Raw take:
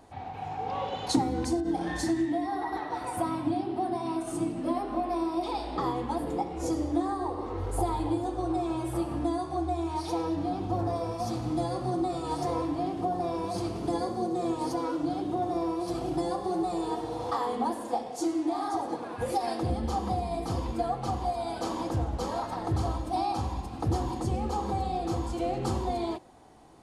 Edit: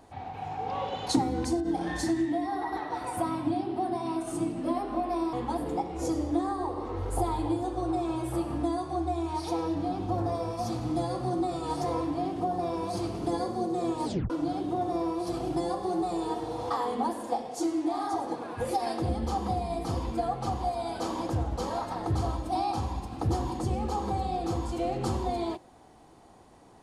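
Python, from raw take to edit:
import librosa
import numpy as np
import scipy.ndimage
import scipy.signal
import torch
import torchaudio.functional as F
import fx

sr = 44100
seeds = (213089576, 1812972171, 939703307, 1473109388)

y = fx.edit(x, sr, fx.cut(start_s=5.33, length_s=0.61),
    fx.tape_stop(start_s=14.66, length_s=0.25), tone=tone)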